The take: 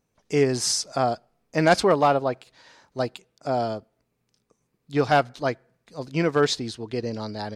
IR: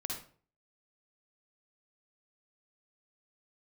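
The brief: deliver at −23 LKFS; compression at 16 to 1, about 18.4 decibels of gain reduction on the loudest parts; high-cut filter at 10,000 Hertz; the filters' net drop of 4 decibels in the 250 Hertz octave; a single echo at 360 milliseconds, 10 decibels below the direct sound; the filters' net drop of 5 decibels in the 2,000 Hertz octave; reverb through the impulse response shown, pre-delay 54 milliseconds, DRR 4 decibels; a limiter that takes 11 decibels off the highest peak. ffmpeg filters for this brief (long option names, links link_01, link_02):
-filter_complex "[0:a]lowpass=10000,equalizer=frequency=250:width_type=o:gain=-5.5,equalizer=frequency=2000:width_type=o:gain=-7,acompressor=threshold=-34dB:ratio=16,alimiter=level_in=9dB:limit=-24dB:level=0:latency=1,volume=-9dB,aecho=1:1:360:0.316,asplit=2[link_01][link_02];[1:a]atrim=start_sample=2205,adelay=54[link_03];[link_02][link_03]afir=irnorm=-1:irlink=0,volume=-4.5dB[link_04];[link_01][link_04]amix=inputs=2:normalize=0,volume=18.5dB"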